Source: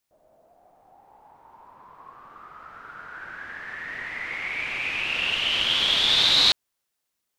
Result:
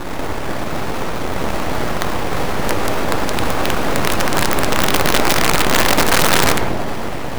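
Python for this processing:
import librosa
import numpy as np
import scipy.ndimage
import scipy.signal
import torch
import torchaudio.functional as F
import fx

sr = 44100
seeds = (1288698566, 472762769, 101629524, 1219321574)

p1 = fx.bin_compress(x, sr, power=0.2)
p2 = scipy.signal.sosfilt(scipy.signal.butter(2, 3000.0, 'lowpass', fs=sr, output='sos'), p1)
p3 = fx.rider(p2, sr, range_db=4, speed_s=0.5)
p4 = p2 + (p3 * 10.0 ** (-1.0 / 20.0))
p5 = fx.sample_hold(p4, sr, seeds[0], rate_hz=1300.0, jitter_pct=0)
p6 = fx.low_shelf(p5, sr, hz=170.0, db=-8.0)
p7 = fx.room_shoebox(p6, sr, seeds[1], volume_m3=1600.0, walls='mixed', distance_m=2.4)
p8 = np.abs(p7)
p9 = fx.high_shelf(p8, sr, hz=2000.0, db=-5.0)
y = (np.mod(10.0 ** (5.0 / 20.0) * p9 + 1.0, 2.0) - 1.0) / 10.0 ** (5.0 / 20.0)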